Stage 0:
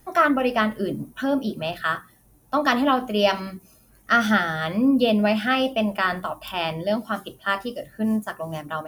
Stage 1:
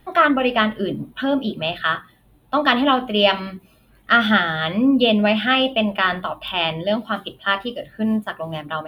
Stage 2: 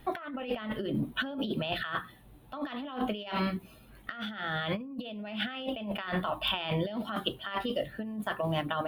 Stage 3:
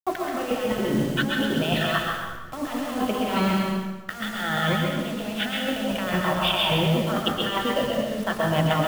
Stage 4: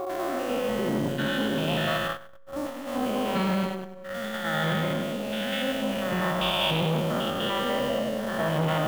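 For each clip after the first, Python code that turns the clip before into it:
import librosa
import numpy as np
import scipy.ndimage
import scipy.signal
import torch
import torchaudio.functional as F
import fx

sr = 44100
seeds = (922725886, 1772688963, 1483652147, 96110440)

y1 = fx.high_shelf_res(x, sr, hz=4500.0, db=-9.5, q=3.0)
y1 = F.gain(torch.from_numpy(y1), 2.5).numpy()
y2 = fx.over_compress(y1, sr, threshold_db=-28.0, ratio=-1.0)
y2 = F.gain(torch.from_numpy(y2), -7.0).numpy()
y3 = fx.delta_hold(y2, sr, step_db=-41.5)
y3 = y3 + 10.0 ** (-6.5 / 20.0) * np.pad(y3, (int(132 * sr / 1000.0), 0))[:len(y3)]
y3 = fx.rev_plate(y3, sr, seeds[0], rt60_s=1.1, hf_ratio=0.85, predelay_ms=105, drr_db=0.5)
y3 = F.gain(torch.from_numpy(y3), 6.0).numpy()
y4 = fx.spec_steps(y3, sr, hold_ms=100)
y4 = y4 + 10.0 ** (-32.0 / 20.0) * np.sin(2.0 * np.pi * 550.0 * np.arange(len(y4)) / sr)
y4 = fx.transformer_sat(y4, sr, knee_hz=570.0)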